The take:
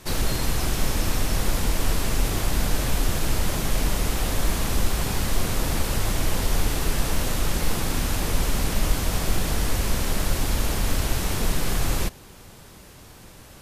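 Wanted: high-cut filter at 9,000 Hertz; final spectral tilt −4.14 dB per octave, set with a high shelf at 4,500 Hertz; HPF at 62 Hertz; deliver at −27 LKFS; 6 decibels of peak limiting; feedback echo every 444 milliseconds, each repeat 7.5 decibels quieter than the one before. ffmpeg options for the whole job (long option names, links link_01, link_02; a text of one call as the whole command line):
ffmpeg -i in.wav -af "highpass=62,lowpass=9000,highshelf=frequency=4500:gain=3,alimiter=limit=-19.5dB:level=0:latency=1,aecho=1:1:444|888|1332|1776|2220:0.422|0.177|0.0744|0.0312|0.0131,volume=1dB" out.wav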